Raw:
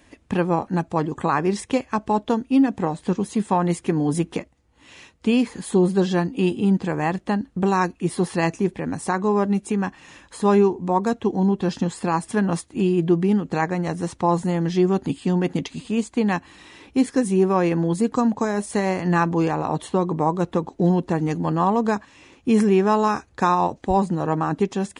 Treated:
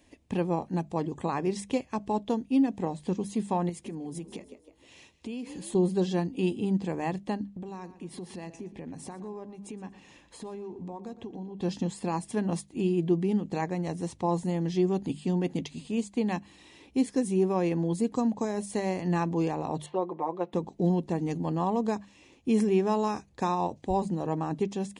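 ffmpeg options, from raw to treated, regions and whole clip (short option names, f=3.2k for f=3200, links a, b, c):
-filter_complex "[0:a]asettb=1/sr,asplit=3[a][b][c];[a]atrim=end=3.694[d];[b]atrim=start=3.69:end=5.75,asetpts=PTS-STARTPTS,afade=t=in:d=0.004:c=qsin,afade=t=out:st=2.056:d=0.004:c=qsin,asplit=5[e][f][g][h][i];[f]adelay=158,afreqshift=45,volume=-18.5dB[j];[g]adelay=316,afreqshift=90,volume=-25.6dB[k];[h]adelay=474,afreqshift=135,volume=-32.8dB[l];[i]adelay=632,afreqshift=180,volume=-39.9dB[m];[e][j][k][l][m]amix=inputs=5:normalize=0,atrim=end_sample=90846,acompressor=threshold=-27dB:ratio=6:attack=3.2:release=140:knee=1:detection=peak[n];[c]atrim=start=5.746[o];[d][n]acrossfade=d=0.004:c1=hsin:c2=qsin[p];[p][o]acrossfade=d=0.004:c1=qsin:c2=hsin,asettb=1/sr,asplit=3[q][r][s];[q]atrim=end=7.444[t];[r]atrim=start=7.44:end=11.61,asetpts=PTS-STARTPTS,afade=t=in:d=0.004:c=qsin,afade=t=out:st=4.166:d=0.004:c=qsin,highshelf=f=7k:g=-7.5,acompressor=threshold=-29dB:ratio=6:attack=3.2:release=140:knee=1:detection=peak,asplit=2[u][v];[v]adelay=118,lowpass=f=4.7k:p=1,volume=-14dB,asplit=2[w][x];[x]adelay=118,lowpass=f=4.7k:p=1,volume=0.37,asplit=2[y][z];[z]adelay=118,lowpass=f=4.7k:p=1,volume=0.37,asplit=2[aa][ab];[ab]adelay=118,lowpass=f=4.7k:p=1,volume=0.37[ac];[u][w][y][aa][ac]amix=inputs=5:normalize=0,atrim=end_sample=183897[ad];[s]atrim=start=11.606[ae];[t][ad]acrossfade=d=0.004:c1=hsin:c2=qsin[af];[af][ae]acrossfade=d=0.004:c1=qsin:c2=hsin,asettb=1/sr,asplit=3[ag][ah][ai];[ag]atrim=end=19.864[aj];[ah]atrim=start=19.86:end=20.53,asetpts=PTS-STARTPTS,afade=t=in:d=0.004:c=qsin,afade=t=out:st=0.666:d=0.004:c=qsin,highpass=500,lowpass=2.3k,aecho=1:1:5.7:0.92,atrim=end_sample=29547[ak];[ai]atrim=start=20.526[al];[aj][ak]acrossfade=d=0.004:c1=hsin:c2=qsin[am];[am][al]acrossfade=d=0.004:c1=qsin:c2=hsin,equalizer=f=1.4k:t=o:w=0.72:g=-11,bandreject=f=50:t=h:w=6,bandreject=f=100:t=h:w=6,bandreject=f=150:t=h:w=6,bandreject=f=200:t=h:w=6,volume=-6.5dB"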